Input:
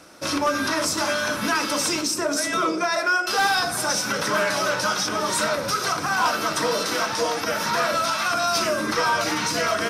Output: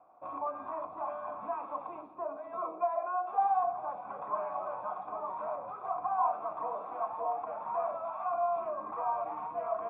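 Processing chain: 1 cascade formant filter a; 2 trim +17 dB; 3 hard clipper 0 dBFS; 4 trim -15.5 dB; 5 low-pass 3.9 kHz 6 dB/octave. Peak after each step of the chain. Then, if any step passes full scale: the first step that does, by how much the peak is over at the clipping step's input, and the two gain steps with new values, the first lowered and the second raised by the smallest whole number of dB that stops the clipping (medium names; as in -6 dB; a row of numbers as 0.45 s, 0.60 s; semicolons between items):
-19.5 dBFS, -2.5 dBFS, -2.5 dBFS, -18.0 dBFS, -18.0 dBFS; nothing clips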